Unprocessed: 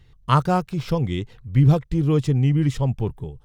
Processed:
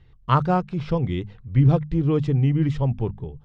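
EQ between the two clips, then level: air absorption 100 m; high shelf 5900 Hz -11 dB; notches 50/100/150/200/250 Hz; 0.0 dB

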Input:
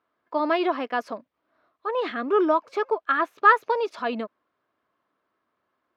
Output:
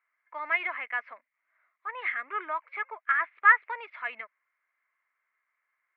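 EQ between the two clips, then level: HPF 1300 Hz 12 dB/oct; synth low-pass 2100 Hz, resonance Q 9.3; air absorption 250 m; -4.5 dB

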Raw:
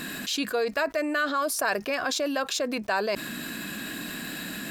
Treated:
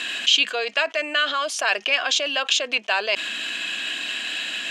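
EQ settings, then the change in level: speaker cabinet 470–8500 Hz, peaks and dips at 700 Hz +3 dB, 3100 Hz +10 dB, 6500 Hz +6 dB; bell 2700 Hz +11 dB 1.1 oct; 0.0 dB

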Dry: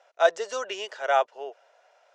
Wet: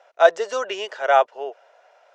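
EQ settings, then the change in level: high shelf 3800 Hz -7.5 dB; +6.5 dB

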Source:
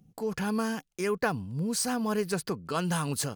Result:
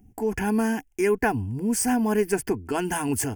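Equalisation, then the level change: low shelf 210 Hz +11.5 dB; fixed phaser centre 810 Hz, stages 8; +7.0 dB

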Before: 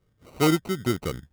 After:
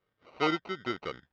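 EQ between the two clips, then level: Bessel low-pass 3000 Hz, order 8; low shelf 200 Hz -12 dB; low shelf 400 Hz -10.5 dB; 0.0 dB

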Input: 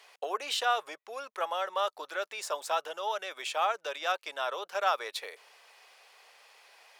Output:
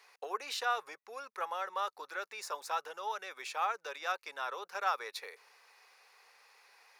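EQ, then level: thirty-one-band EQ 315 Hz -6 dB, 630 Hz -11 dB, 3150 Hz -11 dB, 8000 Hz -7 dB, 16000 Hz -4 dB; -2.5 dB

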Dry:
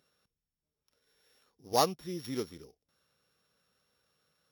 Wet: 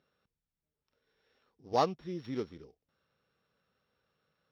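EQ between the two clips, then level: air absorption 210 m; 0.0 dB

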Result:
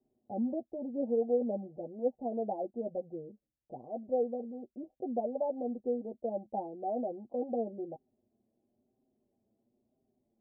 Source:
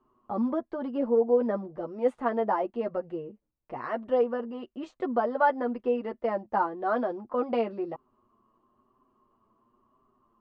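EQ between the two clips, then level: HPF 42 Hz; rippled Chebyshev low-pass 800 Hz, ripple 3 dB; -4.5 dB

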